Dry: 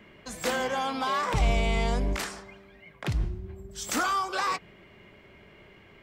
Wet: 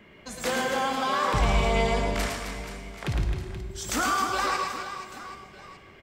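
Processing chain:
reverse bouncing-ball delay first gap 110 ms, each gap 1.4×, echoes 5
four-comb reverb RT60 1.7 s, combs from 33 ms, DRR 8.5 dB

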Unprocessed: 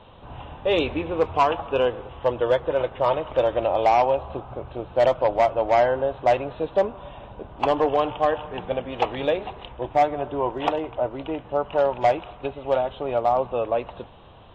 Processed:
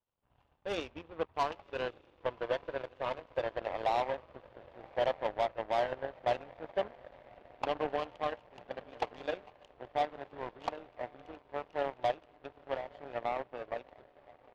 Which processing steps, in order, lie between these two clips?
downsampling to 8,000 Hz
feedback delay with all-pass diffusion 1,103 ms, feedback 65%, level −11 dB
power curve on the samples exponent 2
level −8.5 dB

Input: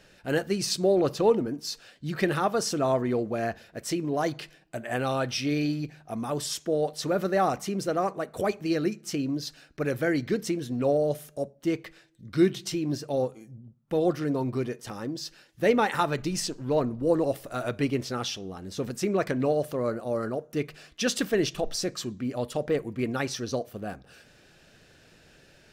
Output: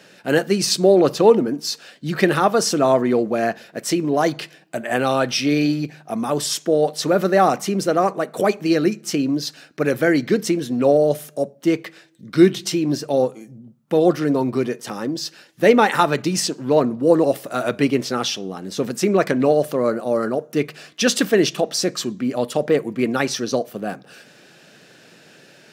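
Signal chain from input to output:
high-pass filter 150 Hz 24 dB per octave
level +9 dB

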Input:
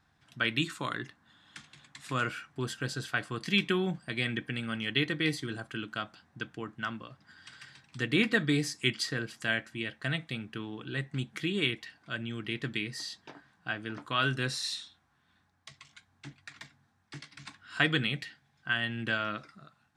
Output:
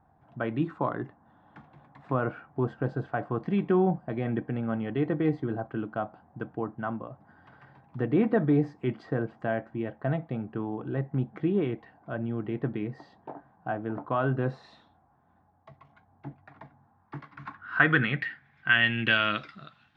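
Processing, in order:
in parallel at −1 dB: brickwall limiter −21 dBFS, peak gain reduction 11.5 dB
on the sum: low-pass filter sweep 770 Hz → 3,300 Hz, 0:16.61–0:19.43

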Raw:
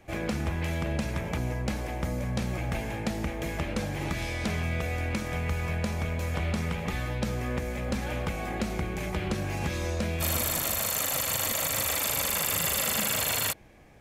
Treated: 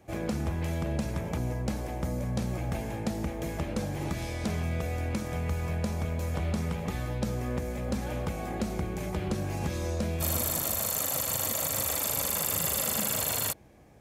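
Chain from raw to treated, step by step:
high-pass filter 49 Hz
parametric band 2,300 Hz −7.5 dB 1.8 octaves

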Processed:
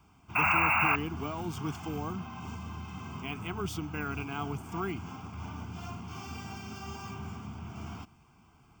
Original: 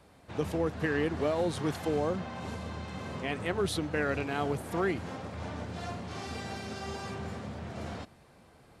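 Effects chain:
sound drawn into the spectrogram noise, 0:00.35–0:00.96, 520–2,800 Hz −23 dBFS
bad sample-rate conversion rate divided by 2×, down filtered, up hold
phaser with its sweep stopped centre 2,700 Hz, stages 8

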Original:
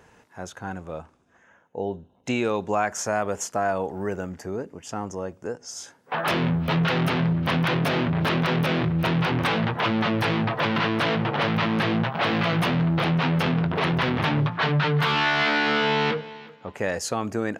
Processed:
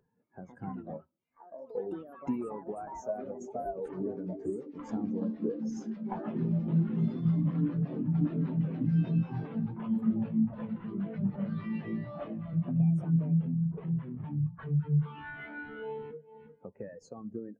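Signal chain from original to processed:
high-pass filter 93 Hz 24 dB per octave
in parallel at −7 dB: sample-and-hold swept by an LFO 41×, swing 100% 2.5 Hz
on the sum: downward compressor 8 to 1, threshold −39 dBFS, peak gain reduction 22 dB
delay with pitch and tempo change per echo 210 ms, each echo +5 semitones, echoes 3
convolution reverb RT60 0.85 s, pre-delay 53 ms, DRR 17 dB
every bin expanded away from the loudest bin 2.5 to 1
level +5 dB

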